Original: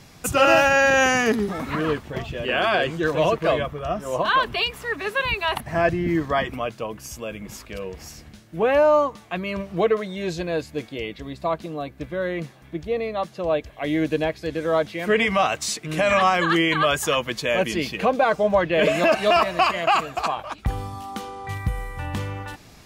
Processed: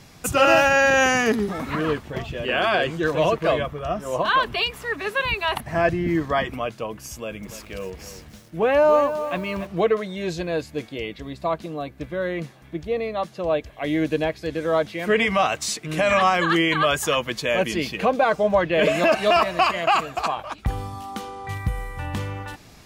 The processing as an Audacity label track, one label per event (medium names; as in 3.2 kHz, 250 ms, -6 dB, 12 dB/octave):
7.140000	9.670000	bit-crushed delay 289 ms, feedback 35%, word length 7-bit, level -10.5 dB